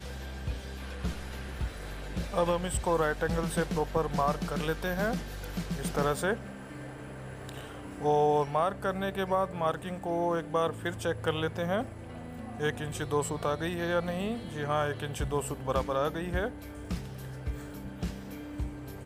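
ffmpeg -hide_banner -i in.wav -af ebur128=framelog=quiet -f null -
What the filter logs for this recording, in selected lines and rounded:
Integrated loudness:
  I:         -32.0 LUFS
  Threshold: -42.4 LUFS
Loudness range:
  LRA:         4.1 LU
  Threshold: -51.9 LUFS
  LRA low:   -34.2 LUFS
  LRA high:  -30.1 LUFS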